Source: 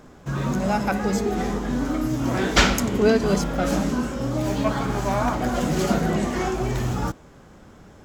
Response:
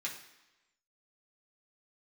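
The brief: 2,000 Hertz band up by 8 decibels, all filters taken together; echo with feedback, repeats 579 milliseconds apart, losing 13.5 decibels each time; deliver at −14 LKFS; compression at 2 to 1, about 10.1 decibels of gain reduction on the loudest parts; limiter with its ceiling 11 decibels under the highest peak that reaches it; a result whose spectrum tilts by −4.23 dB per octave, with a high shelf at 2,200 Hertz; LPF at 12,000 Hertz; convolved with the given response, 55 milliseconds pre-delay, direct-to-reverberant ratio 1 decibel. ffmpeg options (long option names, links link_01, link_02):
-filter_complex "[0:a]lowpass=12000,equalizer=frequency=2000:width_type=o:gain=7,highshelf=frequency=2200:gain=6.5,acompressor=threshold=-25dB:ratio=2,alimiter=limit=-17.5dB:level=0:latency=1,aecho=1:1:579|1158:0.211|0.0444,asplit=2[link_01][link_02];[1:a]atrim=start_sample=2205,adelay=55[link_03];[link_02][link_03]afir=irnorm=-1:irlink=0,volume=-2.5dB[link_04];[link_01][link_04]amix=inputs=2:normalize=0,volume=11.5dB"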